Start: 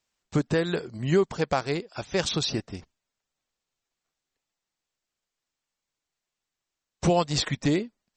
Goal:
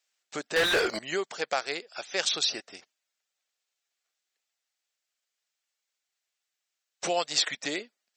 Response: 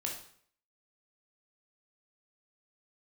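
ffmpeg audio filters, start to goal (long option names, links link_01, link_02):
-filter_complex "[0:a]highpass=730,equalizer=frequency=1000:width_type=o:width=0.58:gain=-8.5,asettb=1/sr,asplit=3[link_01][link_02][link_03];[link_01]atrim=end=0.564[link_04];[link_02]atrim=start=0.56:end=0.99,asetpts=PTS-STARTPTS,afade=type=in:duration=0.004:curve=qsin,afade=type=out:start_time=0.426:duration=0.004:curve=qsin,asplit=2[link_05][link_06];[link_06]highpass=frequency=720:poles=1,volume=36dB,asoftclip=type=tanh:threshold=-17.5dB[link_07];[link_05][link_07]amix=inputs=2:normalize=0,lowpass=frequency=2300:poles=1,volume=-6dB[link_08];[link_03]atrim=start=0.986[link_09];[link_04][link_08]acrossfade=duration=0.004:curve1=hsin:curve2=qsin[link_10];[link_10][link_09]acrossfade=duration=0.004:curve1=qsin:curve2=hsin,volume=2.5dB"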